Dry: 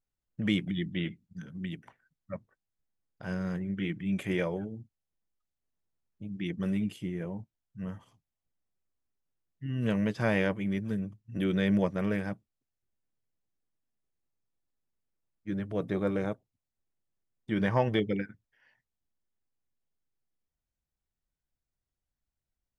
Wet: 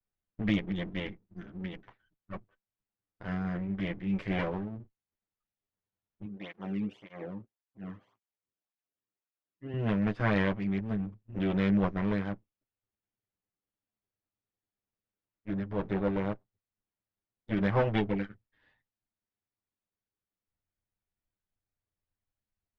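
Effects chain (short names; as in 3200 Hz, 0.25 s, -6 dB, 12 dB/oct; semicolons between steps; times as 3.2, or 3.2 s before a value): minimum comb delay 9.9 ms; LPF 2800 Hz 12 dB/oct; 6.26–9.74 tape flanging out of phase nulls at 1.8 Hz, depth 1.5 ms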